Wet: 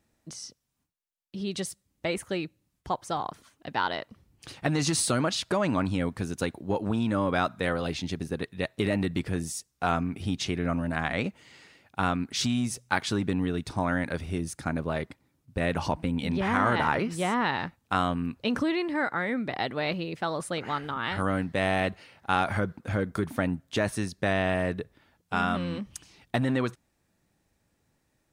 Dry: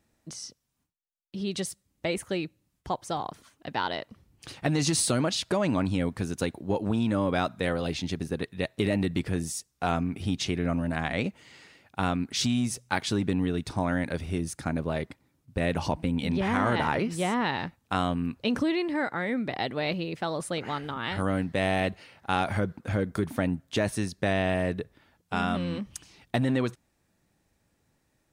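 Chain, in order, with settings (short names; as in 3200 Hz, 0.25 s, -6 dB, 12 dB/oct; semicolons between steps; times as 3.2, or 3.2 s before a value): dynamic EQ 1300 Hz, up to +5 dB, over -41 dBFS, Q 1.3; gain -1 dB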